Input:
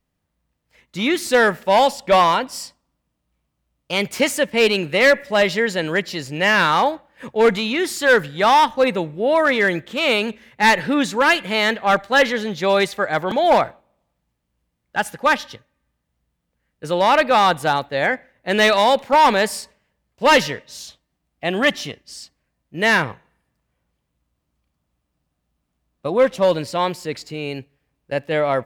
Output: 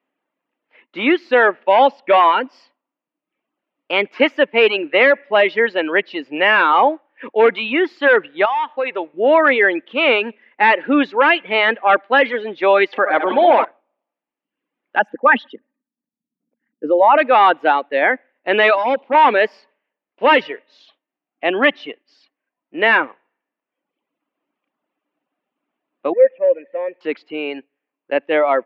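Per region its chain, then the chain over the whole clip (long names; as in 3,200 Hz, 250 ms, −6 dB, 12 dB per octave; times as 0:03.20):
0:08.45–0:09.14: parametric band 210 Hz −13.5 dB 1.3 octaves + downward compressor 8 to 1, threshold −20 dBFS
0:12.93–0:13.65: flutter between parallel walls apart 11.7 metres, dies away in 0.82 s + upward compression, threshold −16 dBFS
0:14.99–0:17.18: spectral envelope exaggerated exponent 2 + parametric band 220 Hz +13.5 dB 0.73 octaves
0:18.75–0:19.15: parametric band 1,700 Hz −13 dB 0.85 octaves + hard clipping −17.5 dBFS
0:26.13–0:27.01: converter with a step at zero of −32.5 dBFS + formant resonators in series e
whole clip: elliptic band-pass filter 280–2,800 Hz, stop band 50 dB; reverb reduction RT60 0.84 s; boost into a limiter +7.5 dB; level −2 dB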